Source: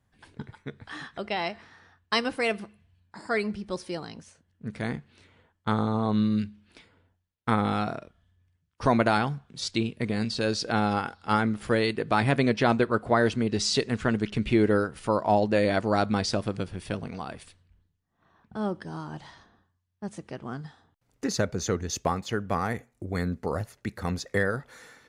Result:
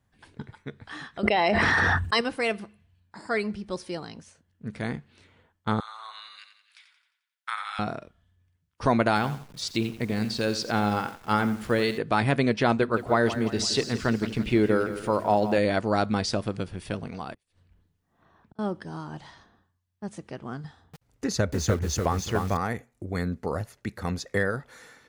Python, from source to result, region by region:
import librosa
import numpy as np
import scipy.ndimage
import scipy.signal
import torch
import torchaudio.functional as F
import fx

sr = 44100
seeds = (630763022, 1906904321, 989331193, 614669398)

y = fx.chain(x, sr, fx.envelope_sharpen(power=1.5),
    fx.peak_eq(hz=8400.0, db=13.5, octaves=0.45),
    fx.env_flatten(amount_pct=100), at=(1.23, 2.21))
y = fx.chain(y, sr, fx.highpass(hz=1300.0, slope=24),
    fx.echo_feedback(ms=88, feedback_pct=49, wet_db=-8.5), at=(5.8, 7.79))
y = fx.chain(y, sr, fx.delta_hold(step_db=-46.5),
    fx.echo_crushed(ms=86, feedback_pct=35, bits=7, wet_db=-12.0), at=(9.15, 11.98))
y = fx.chain(y, sr, fx.hum_notches(base_hz=50, count=6),
    fx.echo_crushed(ms=168, feedback_pct=55, bits=8, wet_db=-12.0), at=(12.77, 15.58))
y = fx.chain(y, sr, fx.peak_eq(hz=480.0, db=3.0, octaves=1.9),
    fx.gate_flip(shuts_db=-39.0, range_db=-31),
    fx.band_squash(depth_pct=40), at=(17.34, 18.59))
y = fx.chain(y, sr, fx.peak_eq(hz=67.0, db=13.0, octaves=0.87),
    fx.echo_crushed(ms=293, feedback_pct=35, bits=7, wet_db=-3.5), at=(20.64, 22.57))